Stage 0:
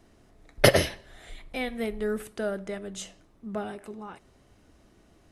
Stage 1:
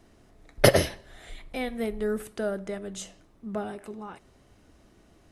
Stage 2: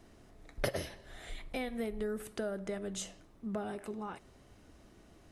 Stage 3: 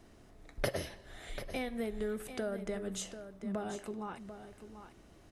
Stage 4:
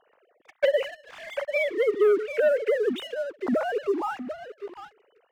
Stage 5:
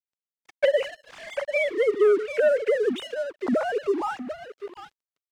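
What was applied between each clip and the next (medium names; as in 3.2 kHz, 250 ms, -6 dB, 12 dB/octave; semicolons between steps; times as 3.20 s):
dynamic bell 2.6 kHz, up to -4 dB, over -46 dBFS, Q 0.84; trim +1 dB
compression 4:1, threshold -33 dBFS, peak gain reduction 17.5 dB; trim -1 dB
delay 741 ms -11 dB
formants replaced by sine waves; waveshaping leveller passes 2; trim +7.5 dB
resampled via 22.05 kHz; crossover distortion -53 dBFS; trim +1.5 dB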